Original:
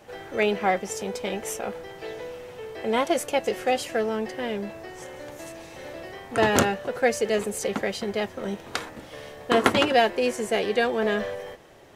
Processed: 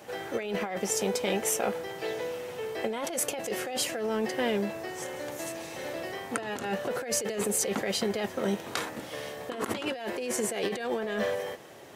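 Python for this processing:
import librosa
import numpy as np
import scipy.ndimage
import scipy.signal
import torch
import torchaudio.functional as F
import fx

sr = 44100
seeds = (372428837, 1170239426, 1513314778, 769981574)

y = scipy.signal.sosfilt(scipy.signal.butter(2, 120.0, 'highpass', fs=sr, output='sos'), x)
y = fx.high_shelf(y, sr, hz=7300.0, db=6.5)
y = fx.over_compress(y, sr, threshold_db=-29.0, ratio=-1.0)
y = F.gain(torch.from_numpy(y), -1.5).numpy()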